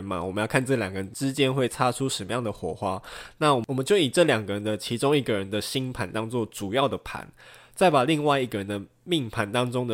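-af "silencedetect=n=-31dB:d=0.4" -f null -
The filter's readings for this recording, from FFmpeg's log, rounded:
silence_start: 7.23
silence_end: 7.78 | silence_duration: 0.56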